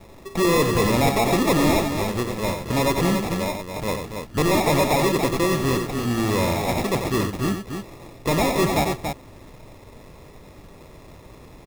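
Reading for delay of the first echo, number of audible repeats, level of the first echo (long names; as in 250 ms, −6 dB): 91 ms, 2, −7.0 dB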